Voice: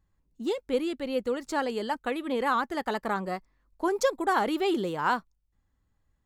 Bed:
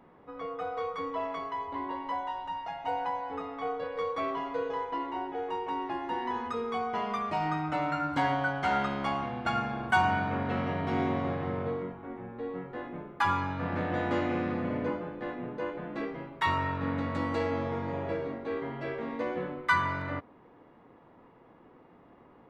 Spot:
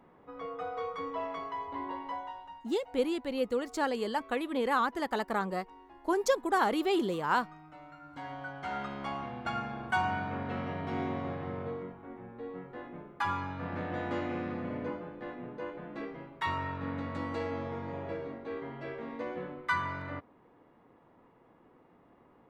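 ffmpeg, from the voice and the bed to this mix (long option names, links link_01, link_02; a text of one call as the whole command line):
ffmpeg -i stem1.wav -i stem2.wav -filter_complex "[0:a]adelay=2250,volume=-2dB[link_01];[1:a]volume=13dB,afade=type=out:start_time=1.95:duration=0.76:silence=0.125893,afade=type=in:start_time=8.01:duration=1.26:silence=0.16788[link_02];[link_01][link_02]amix=inputs=2:normalize=0" out.wav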